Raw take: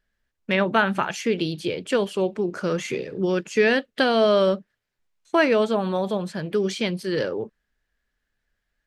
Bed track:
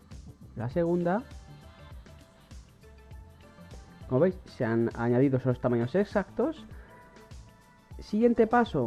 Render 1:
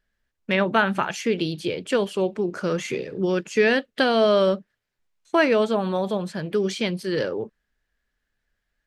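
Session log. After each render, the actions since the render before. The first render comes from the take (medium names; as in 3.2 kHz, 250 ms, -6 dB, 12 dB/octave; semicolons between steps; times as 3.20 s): no audible change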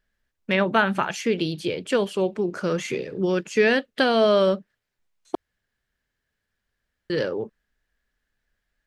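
5.35–7.10 s: room tone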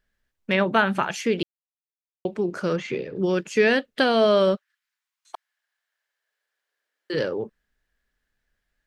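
1.43–2.25 s: mute; 2.76–3.16 s: distance through air 150 m; 4.55–7.13 s: high-pass 1.3 kHz -> 330 Hz 24 dB/octave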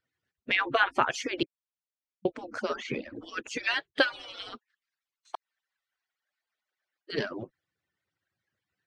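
harmonic-percussive separation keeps percussive; low-pass 6.1 kHz 12 dB/octave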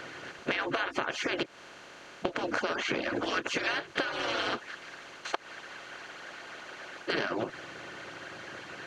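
spectral levelling over time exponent 0.4; compression 12:1, threshold -27 dBFS, peak gain reduction 14 dB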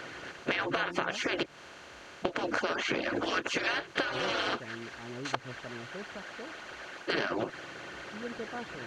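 add bed track -18 dB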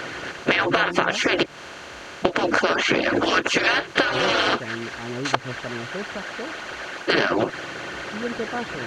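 trim +11 dB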